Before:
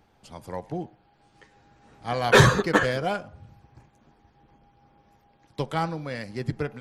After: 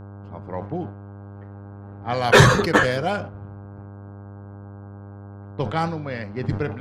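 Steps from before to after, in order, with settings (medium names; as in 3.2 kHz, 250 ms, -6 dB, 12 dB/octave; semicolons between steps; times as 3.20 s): level-controlled noise filter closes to 1.1 kHz, open at -20.5 dBFS; mains buzz 100 Hz, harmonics 16, -42 dBFS -7 dB/octave; decay stretcher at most 95 dB/s; trim +3 dB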